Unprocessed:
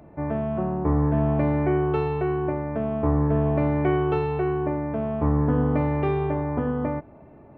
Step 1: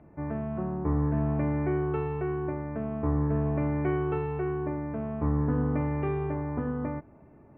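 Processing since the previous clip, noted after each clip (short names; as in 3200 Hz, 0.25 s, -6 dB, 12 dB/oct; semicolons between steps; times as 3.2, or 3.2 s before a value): LPF 2500 Hz 24 dB/oct; bell 650 Hz -5 dB 1 oct; gain -4.5 dB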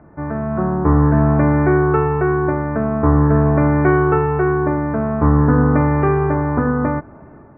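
AGC gain up to 5.5 dB; synth low-pass 1500 Hz, resonance Q 2.3; gain +7.5 dB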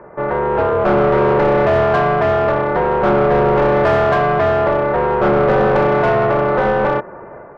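ring modulator 280 Hz; overdrive pedal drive 24 dB, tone 1200 Hz, clips at -2.5 dBFS; gain -2 dB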